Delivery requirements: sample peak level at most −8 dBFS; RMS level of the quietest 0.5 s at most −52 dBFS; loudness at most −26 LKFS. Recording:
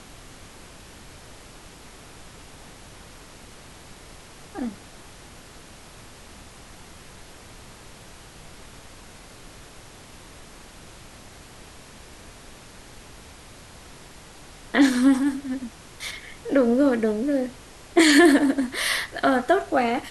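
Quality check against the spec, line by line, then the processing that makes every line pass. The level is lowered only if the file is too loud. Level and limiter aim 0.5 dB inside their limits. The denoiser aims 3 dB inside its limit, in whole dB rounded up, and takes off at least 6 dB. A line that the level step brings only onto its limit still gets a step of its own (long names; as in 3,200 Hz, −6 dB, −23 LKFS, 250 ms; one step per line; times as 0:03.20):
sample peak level −5.5 dBFS: out of spec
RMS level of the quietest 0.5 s −45 dBFS: out of spec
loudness −21.5 LKFS: out of spec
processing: broadband denoise 6 dB, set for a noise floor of −45 dBFS
level −5 dB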